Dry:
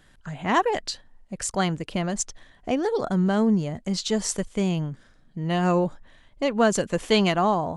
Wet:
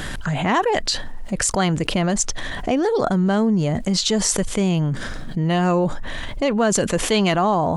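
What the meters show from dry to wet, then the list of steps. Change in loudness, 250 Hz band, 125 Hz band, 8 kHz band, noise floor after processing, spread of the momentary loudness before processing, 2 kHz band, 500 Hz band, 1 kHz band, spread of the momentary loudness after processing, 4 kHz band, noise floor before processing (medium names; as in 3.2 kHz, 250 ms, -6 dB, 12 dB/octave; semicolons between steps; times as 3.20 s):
+4.5 dB, +4.0 dB, +6.0 dB, +8.0 dB, -29 dBFS, 13 LU, +5.0 dB, +4.0 dB, +3.5 dB, 7 LU, +6.5 dB, -57 dBFS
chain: level flattener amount 70%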